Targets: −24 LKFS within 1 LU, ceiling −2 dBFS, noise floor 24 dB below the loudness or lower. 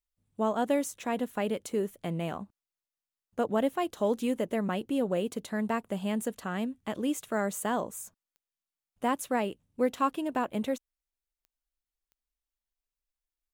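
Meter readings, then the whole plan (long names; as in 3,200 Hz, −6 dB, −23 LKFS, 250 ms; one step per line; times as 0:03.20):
number of clicks 4; integrated loudness −31.5 LKFS; sample peak −15.5 dBFS; target loudness −24.0 LKFS
→ click removal
level +7.5 dB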